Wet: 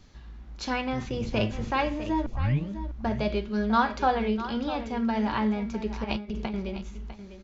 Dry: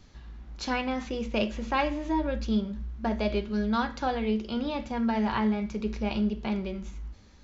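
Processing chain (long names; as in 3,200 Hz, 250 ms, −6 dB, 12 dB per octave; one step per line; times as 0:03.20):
0:00.92–0:01.71: sub-octave generator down 1 octave, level −1 dB
0:02.26: tape start 0.43 s
0:03.43–0:04.28: dynamic equaliser 1,000 Hz, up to +7 dB, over −40 dBFS, Q 0.72
0:06.04–0:06.54: compressor whose output falls as the input rises −32 dBFS, ratio −0.5
single-tap delay 651 ms −12.5 dB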